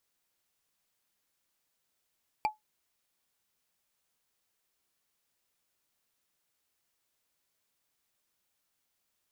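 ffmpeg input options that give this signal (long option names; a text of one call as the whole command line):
ffmpeg -f lavfi -i "aevalsrc='0.0891*pow(10,-3*t/0.15)*sin(2*PI*856*t)+0.0422*pow(10,-3*t/0.044)*sin(2*PI*2360*t)+0.02*pow(10,-3*t/0.02)*sin(2*PI*4625.8*t)+0.00944*pow(10,-3*t/0.011)*sin(2*PI*7646.6*t)+0.00447*pow(10,-3*t/0.007)*sin(2*PI*11419*t)':duration=0.45:sample_rate=44100" out.wav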